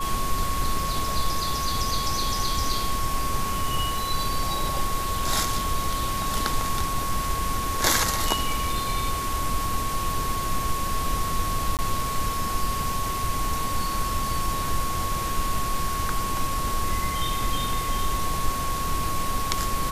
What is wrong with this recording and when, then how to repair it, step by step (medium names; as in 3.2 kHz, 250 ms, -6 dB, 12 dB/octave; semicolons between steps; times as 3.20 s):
whine 1.1 kHz -28 dBFS
11.77–11.79 s: dropout 18 ms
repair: band-stop 1.1 kHz, Q 30; interpolate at 11.77 s, 18 ms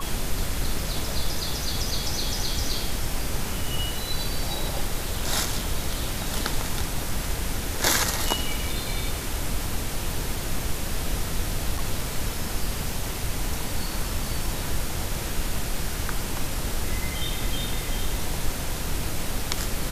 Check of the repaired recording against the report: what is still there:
nothing left